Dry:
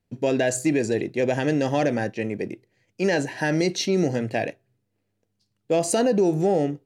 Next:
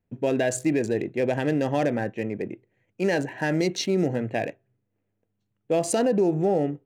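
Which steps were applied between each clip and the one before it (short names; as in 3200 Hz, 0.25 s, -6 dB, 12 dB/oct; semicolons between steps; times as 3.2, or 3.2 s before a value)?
Wiener smoothing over 9 samples; gain -1.5 dB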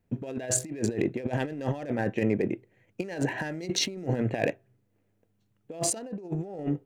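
negative-ratio compressor -29 dBFS, ratio -0.5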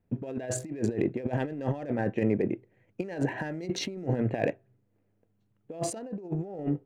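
high shelf 2600 Hz -10.5 dB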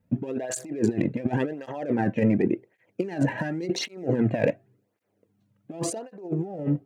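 tape flanging out of phase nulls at 0.9 Hz, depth 2.9 ms; gain +7 dB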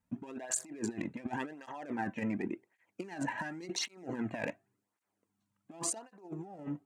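ten-band EQ 125 Hz -12 dB, 500 Hz -12 dB, 1000 Hz +8 dB, 8000 Hz +8 dB; gain -7.5 dB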